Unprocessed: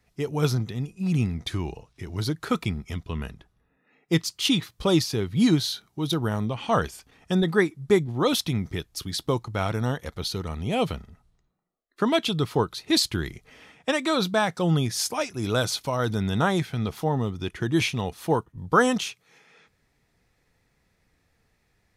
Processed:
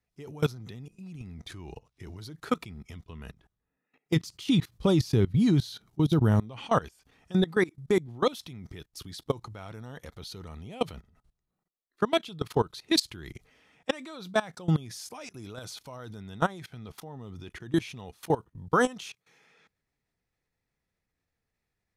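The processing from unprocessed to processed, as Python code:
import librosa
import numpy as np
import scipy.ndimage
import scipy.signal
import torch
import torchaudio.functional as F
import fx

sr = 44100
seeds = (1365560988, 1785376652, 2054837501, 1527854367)

y = fx.low_shelf(x, sr, hz=350.0, db=10.5, at=(4.15, 6.39), fade=0.02)
y = fx.level_steps(y, sr, step_db=21)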